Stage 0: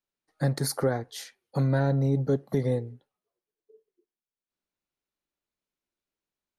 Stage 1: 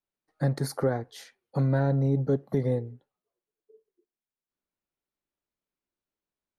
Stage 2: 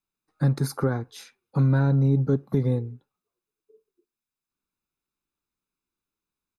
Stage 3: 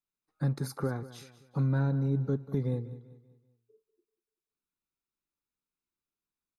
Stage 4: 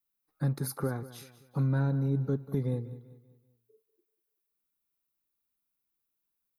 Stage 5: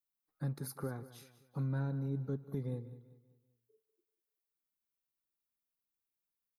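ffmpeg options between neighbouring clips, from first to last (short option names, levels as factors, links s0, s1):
-af "highshelf=f=2600:g=-8.5"
-af "aecho=1:1:0.8:0.56,volume=1.19"
-af "aecho=1:1:193|386|579|772:0.158|0.0634|0.0254|0.0101,volume=0.422"
-af "aexciter=amount=3.7:drive=5:freq=10000"
-af "aecho=1:1:150:0.0708,volume=0.398"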